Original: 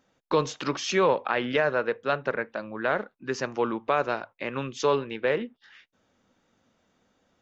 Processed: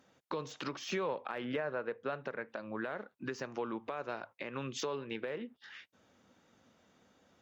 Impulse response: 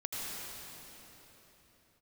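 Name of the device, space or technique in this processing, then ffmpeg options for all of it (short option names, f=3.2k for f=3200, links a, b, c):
podcast mastering chain: -filter_complex "[0:a]asettb=1/sr,asplit=3[a][b][c];[a]atrim=end=1.444[d];[b]atrim=start=1.44:end=2.13,asetpts=PTS-STARTPTS,afade=t=in:d=0.004:c=qsin,afade=t=out:st=0.686:d=0.004:c=qsin,lowpass=f=2.2k:p=1[e];[c]atrim=start=2.126[f];[d][e]acrossfade=d=0.004:c1=hsin:c2=qsin[g];[g][f]acrossfade=d=0.004:c1=qsin:c2=hsin,highpass=62,deesser=0.95,acompressor=threshold=-34dB:ratio=4,alimiter=level_in=3dB:limit=-24dB:level=0:latency=1:release=367,volume=-3dB,volume=2dB" -ar 44100 -c:a libmp3lame -b:a 96k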